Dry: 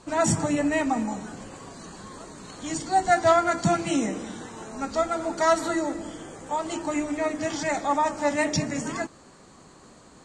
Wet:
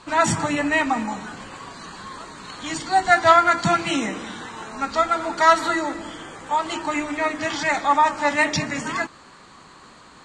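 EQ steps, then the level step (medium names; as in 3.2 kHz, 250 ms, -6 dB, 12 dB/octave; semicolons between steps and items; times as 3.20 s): high-order bell 2 kHz +9 dB 2.6 oct; 0.0 dB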